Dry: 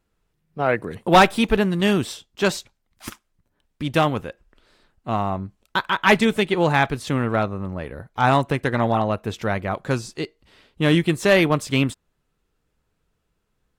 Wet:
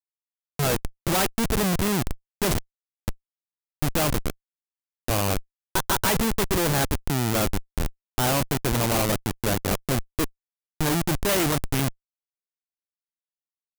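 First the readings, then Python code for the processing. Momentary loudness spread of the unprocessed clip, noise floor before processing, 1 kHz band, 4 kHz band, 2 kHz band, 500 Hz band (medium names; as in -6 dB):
15 LU, -73 dBFS, -7.5 dB, -1.5 dB, -7.0 dB, -6.0 dB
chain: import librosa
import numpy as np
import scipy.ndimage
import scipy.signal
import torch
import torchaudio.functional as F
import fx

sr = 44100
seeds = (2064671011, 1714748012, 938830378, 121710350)

y = fx.schmitt(x, sr, flips_db=-23.0)
y = fx.high_shelf(y, sr, hz=6500.0, db=11.0)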